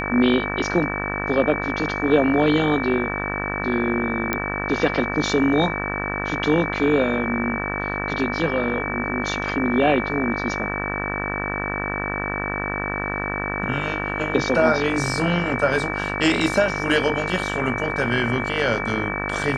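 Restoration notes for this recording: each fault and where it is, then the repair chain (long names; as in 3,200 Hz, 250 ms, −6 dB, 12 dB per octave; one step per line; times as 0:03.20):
mains buzz 50 Hz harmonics 37 −28 dBFS
whistle 2,300 Hz −28 dBFS
0:04.33: click −7 dBFS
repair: click removal
notch filter 2,300 Hz, Q 30
hum removal 50 Hz, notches 37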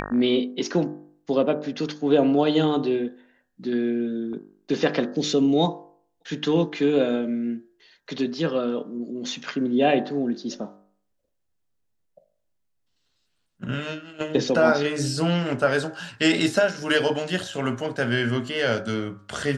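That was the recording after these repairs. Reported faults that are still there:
none of them is left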